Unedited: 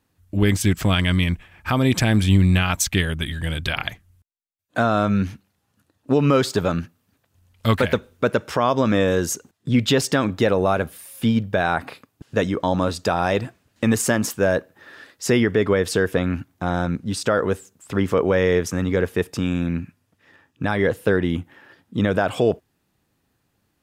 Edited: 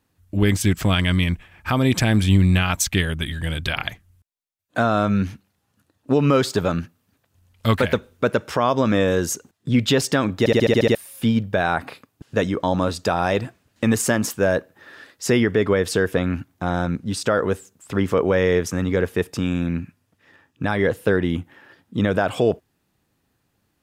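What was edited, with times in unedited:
0:10.39: stutter in place 0.07 s, 8 plays

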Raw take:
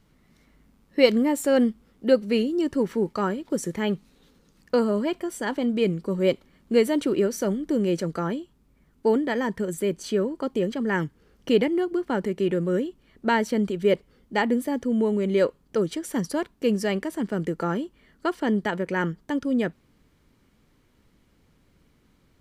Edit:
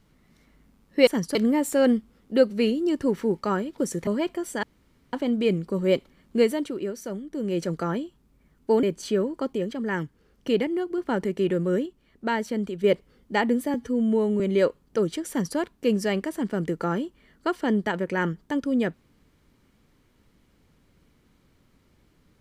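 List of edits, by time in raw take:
0:03.79–0:04.93: remove
0:05.49: splice in room tone 0.50 s
0:06.73–0:08.06: duck −8 dB, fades 0.35 s
0:09.19–0:09.84: remove
0:10.54–0:11.99: clip gain −3 dB
0:12.87–0:13.85: clip gain −4 dB
0:14.75–0:15.19: time-stretch 1.5×
0:16.08–0:16.36: duplicate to 0:01.07

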